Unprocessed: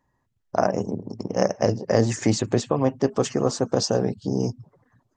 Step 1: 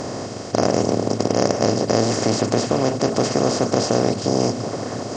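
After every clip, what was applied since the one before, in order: per-bin compression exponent 0.2; gain -4.5 dB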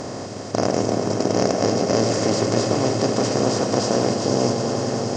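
swelling echo 95 ms, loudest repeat 5, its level -11.5 dB; gain -2.5 dB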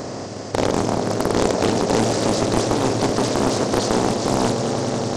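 Doppler distortion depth 0.85 ms; gain +1 dB

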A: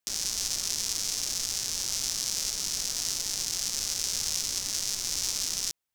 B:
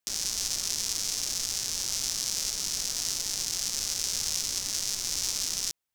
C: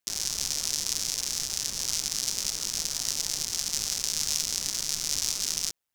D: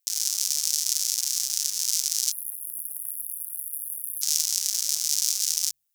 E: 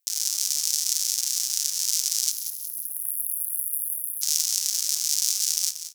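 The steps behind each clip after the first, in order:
nothing audible
AM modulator 150 Hz, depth 75%; gain +4.5 dB
pre-emphasis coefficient 0.97; spectral delete 2.32–4.22, 410–9700 Hz; de-hum 46.35 Hz, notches 4; gain +5.5 dB
HPF 44 Hz; AGC gain up to 6 dB; on a send: feedback echo 0.183 s, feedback 36%, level -11 dB

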